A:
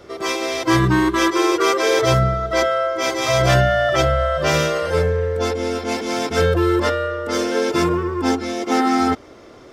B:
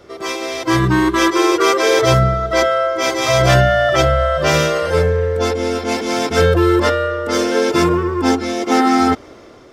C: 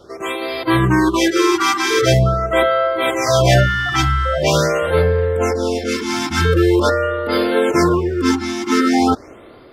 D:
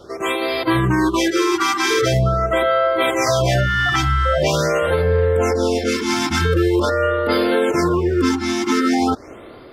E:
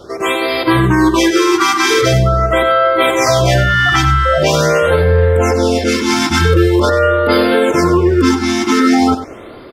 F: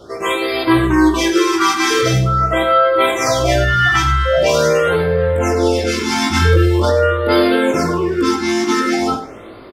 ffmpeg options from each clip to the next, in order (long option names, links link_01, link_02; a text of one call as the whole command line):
ffmpeg -i in.wav -af "dynaudnorm=framelen=580:gausssize=3:maxgain=11.5dB,volume=-1dB" out.wav
ffmpeg -i in.wav -af "afftfilt=real='re*(1-between(b*sr/1024,490*pow(7200/490,0.5+0.5*sin(2*PI*0.44*pts/sr))/1.41,490*pow(7200/490,0.5+0.5*sin(2*PI*0.44*pts/sr))*1.41))':imag='im*(1-between(b*sr/1024,490*pow(7200/490,0.5+0.5*sin(2*PI*0.44*pts/sr))/1.41,490*pow(7200/490,0.5+0.5*sin(2*PI*0.44*pts/sr))*1.41))':win_size=1024:overlap=0.75" out.wav
ffmpeg -i in.wav -af "alimiter=limit=-11dB:level=0:latency=1:release=211,volume=2.5dB" out.wav
ffmpeg -i in.wav -af "aecho=1:1:96:0.266,volume=5.5dB" out.wav
ffmpeg -i in.wav -filter_complex "[0:a]flanger=delay=17:depth=5:speed=0.23,asplit=2[link_01][link_02];[link_02]adelay=49,volume=-10.5dB[link_03];[link_01][link_03]amix=inputs=2:normalize=0" out.wav